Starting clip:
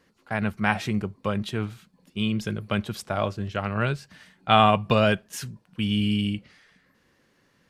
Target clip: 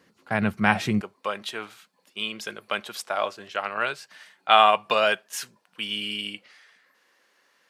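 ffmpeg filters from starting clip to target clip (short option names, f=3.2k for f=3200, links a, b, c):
-af "asetnsamples=n=441:p=0,asendcmd='1.01 highpass f 630',highpass=110,volume=3dB"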